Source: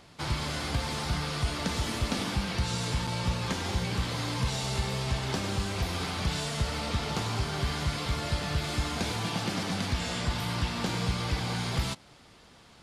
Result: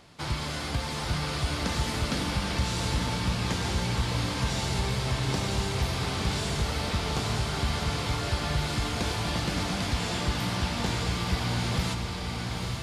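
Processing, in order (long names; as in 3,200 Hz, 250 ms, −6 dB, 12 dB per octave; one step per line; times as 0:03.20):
feedback delay with all-pass diffusion 911 ms, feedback 41%, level −3 dB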